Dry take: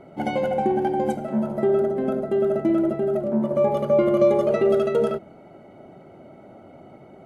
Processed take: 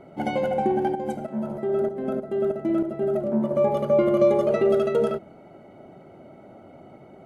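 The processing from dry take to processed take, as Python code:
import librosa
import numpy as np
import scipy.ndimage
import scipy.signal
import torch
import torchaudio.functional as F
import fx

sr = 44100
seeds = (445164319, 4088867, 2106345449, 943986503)

y = fx.tremolo_shape(x, sr, shape='saw_up', hz=3.2, depth_pct=65, at=(0.95, 3.01))
y = y * librosa.db_to_amplitude(-1.0)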